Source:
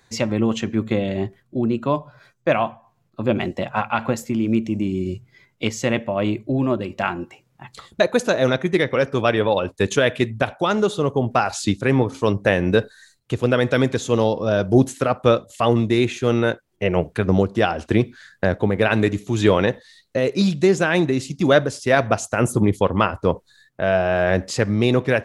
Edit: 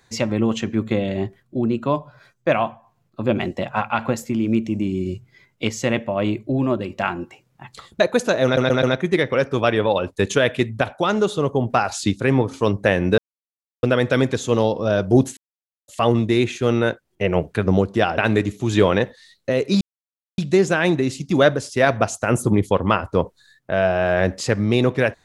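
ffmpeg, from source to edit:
-filter_complex "[0:a]asplit=10[s0][s1][s2][s3][s4][s5][s6][s7][s8][s9];[s0]atrim=end=8.572[s10];[s1]atrim=start=8.438:end=8.572[s11];[s2]atrim=start=8.438:end=8.572[s12];[s3]atrim=start=8.438:end=12.79,asetpts=PTS-STARTPTS,afade=t=out:st=4.348:d=0.004:c=hsin[s13];[s4]atrim=start=12.79:end=13.44,asetpts=PTS-STARTPTS,volume=0[s14];[s5]atrim=start=13.44:end=14.98,asetpts=PTS-STARTPTS,afade=t=in:d=0.004:c=hsin,afade=t=out:st=1.536:d=0.004:c=hsin[s15];[s6]atrim=start=14.98:end=15.49,asetpts=PTS-STARTPTS,volume=0[s16];[s7]atrim=start=15.49:end=17.792,asetpts=PTS-STARTPTS,afade=t=in:d=0.004:c=hsin[s17];[s8]atrim=start=18.848:end=20.48,asetpts=PTS-STARTPTS,afade=t=out:st=1.628:d=0.004:c=hsin,apad=pad_dur=0.57[s18];[s9]atrim=start=20.48,asetpts=PTS-STARTPTS,afade=t=in:d=0.004:c=hsin[s19];[s10][s11]acrossfade=d=0.004:c1=hsin:c2=hsin[s20];[s20][s12]acrossfade=d=0.004:c1=hsin:c2=hsin[s21];[s13][s14][s15][s16][s17]concat=n=5:v=0:a=1[s22];[s21][s22]acrossfade=d=0.004:c1=hsin:c2=hsin[s23];[s18][s19]concat=n=2:v=0:a=1[s24];[s23][s24]acrossfade=d=0.004:c1=hsin:c2=hsin"

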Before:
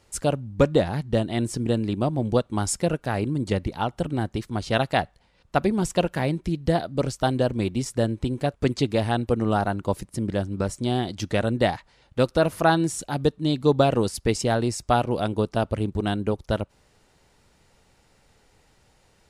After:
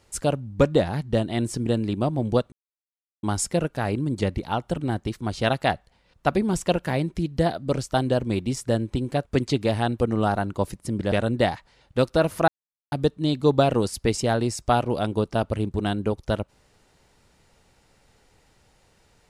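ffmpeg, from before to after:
-filter_complex "[0:a]asplit=5[s0][s1][s2][s3][s4];[s0]atrim=end=2.52,asetpts=PTS-STARTPTS,afade=t=out:st=2.516:d=0.004:c=hsin,apad=pad_dur=0.71[s5];[s1]atrim=start=2.52:end=10.412,asetpts=PTS-STARTPTS,afade=t=in:d=0.004:c=hsin[s6];[s2]atrim=start=11.328:end=12.69,asetpts=PTS-STARTPTS,afade=t=out:st=1.358:d=0.004:c=hsin[s7];[s3]atrim=start=12.69:end=13.13,asetpts=PTS-STARTPTS,volume=0[s8];[s4]atrim=start=13.13,asetpts=PTS-STARTPTS,afade=t=in:d=0.004:c=hsin[s9];[s5][s6]concat=n=2:v=0:a=1[s10];[s7][s8][s9]concat=n=3:v=0:a=1[s11];[s10][s11]acrossfade=d=0.004:c1=hsin:c2=hsin"

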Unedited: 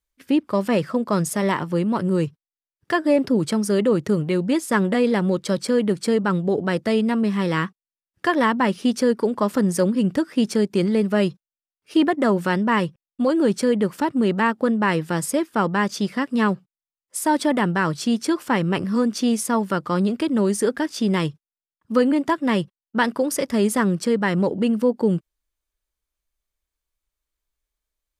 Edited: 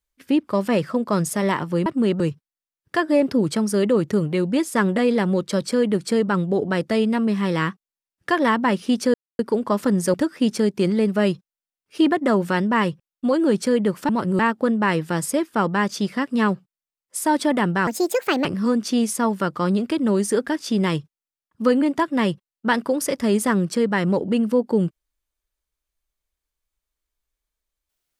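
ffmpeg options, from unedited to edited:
-filter_complex "[0:a]asplit=9[s0][s1][s2][s3][s4][s5][s6][s7][s8];[s0]atrim=end=1.862[s9];[s1]atrim=start=14.048:end=14.392[s10];[s2]atrim=start=2.158:end=9.1,asetpts=PTS-STARTPTS,afade=t=out:st=6.938:d=0.004:c=hsin,apad=pad_dur=0.25[s11];[s3]atrim=start=9.1:end=9.852,asetpts=PTS-STARTPTS,afade=t=in:d=0.004:c=hsin[s12];[s4]atrim=start=10.098:end=14.052[s13];[s5]atrim=start=1.858:end=2.162[s14];[s6]atrim=start=14.388:end=17.874[s15];[s7]atrim=start=17.87:end=18.75,asetpts=PTS-STARTPTS,asetrate=67032,aresample=44100[s16];[s8]atrim=start=18.746[s17];[s9][s10]acrossfade=d=0.004:c1=hsin:c2=hsin[s18];[s11][s12]concat=n=2:v=0:a=1[s19];[s18][s19]acrossfade=d=0.004:c1=hsin:c2=hsin[s20];[s20][s13]acrossfade=d=0.004:c1=hsin:c2=hsin[s21];[s21][s14]acrossfade=d=0.004:c1=hsin:c2=hsin[s22];[s22][s15]acrossfade=d=0.004:c1=hsin:c2=hsin[s23];[s23][s16]acrossfade=d=0.004:c1=hsin:c2=hsin[s24];[s24][s17]acrossfade=d=0.004:c1=hsin:c2=hsin"

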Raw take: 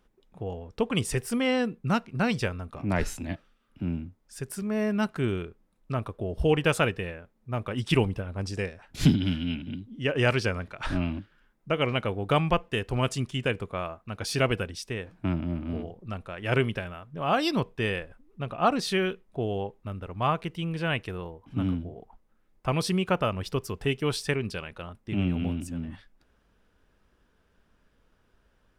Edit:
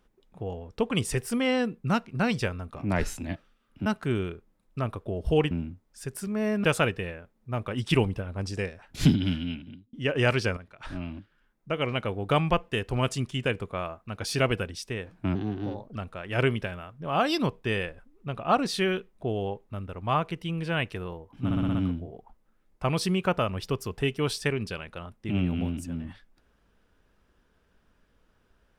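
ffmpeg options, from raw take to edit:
-filter_complex "[0:a]asplit=13[s0][s1][s2][s3][s4][s5][s6][s7][s8][s9][s10][s11][s12];[s0]atrim=end=3.862[s13];[s1]atrim=start=4.988:end=6.642[s14];[s2]atrim=start=3.858:end=4.992[s15];[s3]atrim=start=6.638:end=9.93,asetpts=PTS-STARTPTS,afade=t=out:st=2.702:d=0.59[s16];[s4]atrim=start=9.93:end=10.57,asetpts=PTS-STARTPTS,afade=t=in:d=0.004:c=hsin,afade=t=out:st=0.636:d=0.004:c=hsin:silence=0.251189[s17];[s5]atrim=start=10.57:end=15.354,asetpts=PTS-STARTPTS,afade=t=in:d=1.82:silence=0.251189[s18];[s6]atrim=start=15.35:end=16.09,asetpts=PTS-STARTPTS,asetrate=53802,aresample=44100,atrim=end_sample=26749,asetpts=PTS-STARTPTS[s19];[s7]atrim=start=16.086:end=21.642[s20];[s8]atrim=start=21.578:end=21.642[s21];[s9]atrim=start=21.578:end=21.642[s22];[s10]atrim=start=21.578:end=21.642[s23];[s11]atrim=start=21.578:end=21.642[s24];[s12]atrim=start=21.578[s25];[s13][s14]acrossfade=d=0.004:c1=hsin:c2=hsin[s26];[s26][s15]acrossfade=d=0.004:c1=hsin:c2=hsin[s27];[s16][s17][s18]concat=n=3:v=0:a=1[s28];[s27][s28]acrossfade=d=0.004:c1=hsin:c2=hsin[s29];[s29][s19]acrossfade=d=0.004:c1=hsin:c2=hsin[s30];[s30][s20]acrossfade=d=0.004:c1=hsin:c2=hsin[s31];[s31][s21]acrossfade=d=0.004:c1=hsin:c2=hsin[s32];[s32][s22]acrossfade=d=0.004:c1=hsin:c2=hsin[s33];[s33][s23]acrossfade=d=0.004:c1=hsin:c2=hsin[s34];[s34][s24]acrossfade=d=0.004:c1=hsin:c2=hsin[s35];[s35][s25]acrossfade=d=0.004:c1=hsin:c2=hsin"

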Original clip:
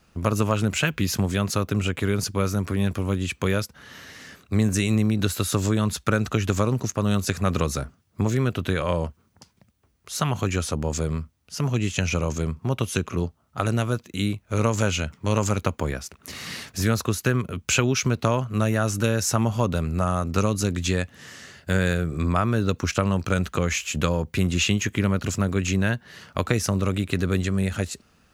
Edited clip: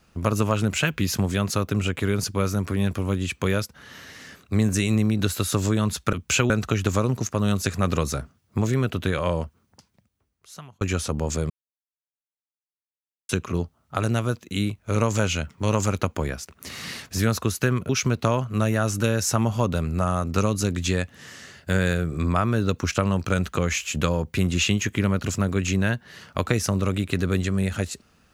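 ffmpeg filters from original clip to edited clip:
-filter_complex "[0:a]asplit=7[s0][s1][s2][s3][s4][s5][s6];[s0]atrim=end=6.132[s7];[s1]atrim=start=17.518:end=17.892[s8];[s2]atrim=start=6.128:end=10.44,asetpts=PTS-STARTPTS,afade=t=out:st=2.832:d=1.48[s9];[s3]atrim=start=10.44:end=11.13,asetpts=PTS-STARTPTS,afade=t=in:d=0.004:c=hsin,afade=t=out:st=0.686:d=0.004:c=hsin[s10];[s4]atrim=start=11.13:end=12.92,asetpts=PTS-STARTPTS,volume=0[s11];[s5]atrim=start=12.92:end=17.522,asetpts=PTS-STARTPTS,afade=t=in:d=0.004:c=hsin[s12];[s6]atrim=start=17.888[s13];[s7][s8]acrossfade=d=0.004:c1=hsin:c2=hsin[s14];[s9][s10][s11][s12]concat=n=4:v=0:a=1[s15];[s14][s15]acrossfade=d=0.004:c1=hsin:c2=hsin[s16];[s16][s13]acrossfade=d=0.004:c1=hsin:c2=hsin"

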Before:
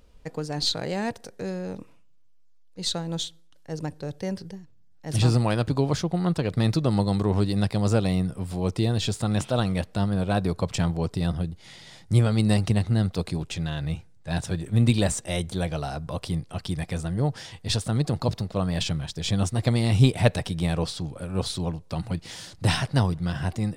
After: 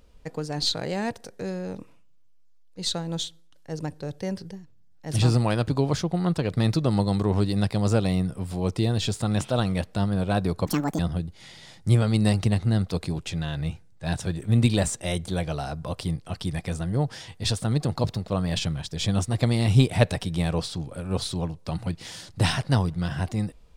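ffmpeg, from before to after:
-filter_complex "[0:a]asplit=3[s0][s1][s2];[s0]atrim=end=10.664[s3];[s1]atrim=start=10.66:end=11.23,asetpts=PTS-STARTPTS,asetrate=76734,aresample=44100[s4];[s2]atrim=start=11.226[s5];[s3][s4]acrossfade=d=0.004:c1=hsin:c2=hsin[s6];[s6][s5]acrossfade=d=0.004:c1=hsin:c2=hsin"

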